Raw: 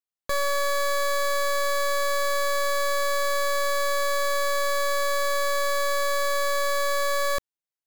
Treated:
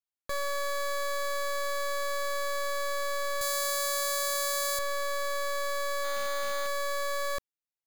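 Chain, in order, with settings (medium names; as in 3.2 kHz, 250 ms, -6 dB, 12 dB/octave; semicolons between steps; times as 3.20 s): 3.41–4.79 s: tone controls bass -11 dB, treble +11 dB; 6.04–6.67 s: careless resampling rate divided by 4×, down none, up hold; trim -7 dB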